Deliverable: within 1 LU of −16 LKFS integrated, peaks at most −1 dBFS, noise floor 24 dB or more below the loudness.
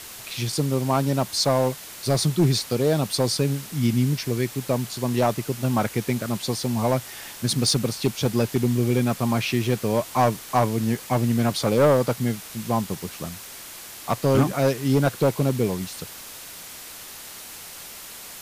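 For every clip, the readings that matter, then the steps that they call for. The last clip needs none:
share of clipped samples 0.7%; peaks flattened at −12.0 dBFS; background noise floor −40 dBFS; target noise floor −48 dBFS; integrated loudness −23.5 LKFS; sample peak −12.0 dBFS; target loudness −16.0 LKFS
→ clipped peaks rebuilt −12 dBFS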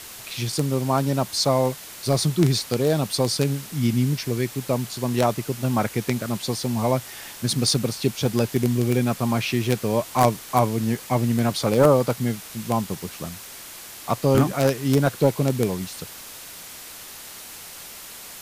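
share of clipped samples 0.0%; background noise floor −40 dBFS; target noise floor −47 dBFS
→ broadband denoise 7 dB, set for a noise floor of −40 dBFS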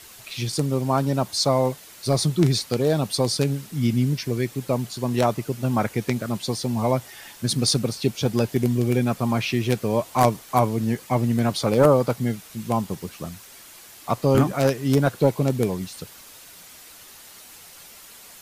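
background noise floor −46 dBFS; target noise floor −47 dBFS
→ broadband denoise 6 dB, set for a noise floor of −46 dBFS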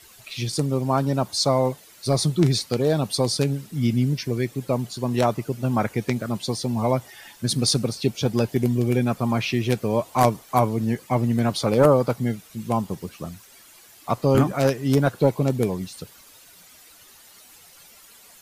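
background noise floor −50 dBFS; integrated loudness −23.0 LKFS; sample peak −3.0 dBFS; target loudness −16.0 LKFS
→ level +7 dB
brickwall limiter −1 dBFS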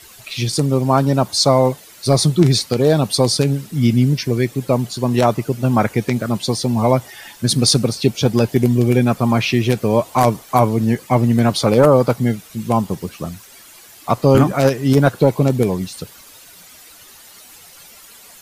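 integrated loudness −16.5 LKFS; sample peak −1.0 dBFS; background noise floor −43 dBFS

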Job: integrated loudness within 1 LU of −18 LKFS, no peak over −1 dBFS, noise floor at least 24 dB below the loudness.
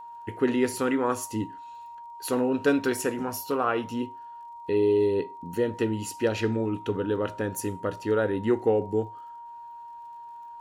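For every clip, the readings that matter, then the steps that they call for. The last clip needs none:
crackle rate 33 per second; interfering tone 940 Hz; level of the tone −40 dBFS; integrated loudness −27.5 LKFS; sample peak −11.0 dBFS; target loudness −18.0 LKFS
→ click removal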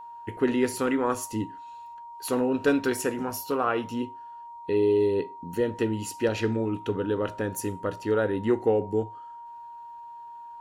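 crackle rate 0 per second; interfering tone 940 Hz; level of the tone −40 dBFS
→ notch filter 940 Hz, Q 30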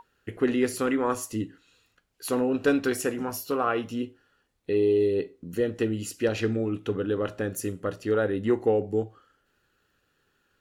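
interfering tone none found; integrated loudness −27.5 LKFS; sample peak −11.5 dBFS; target loudness −18.0 LKFS
→ level +9.5 dB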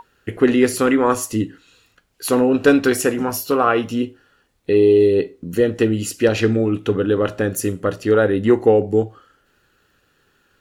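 integrated loudness −18.0 LKFS; sample peak −2.0 dBFS; background noise floor −63 dBFS

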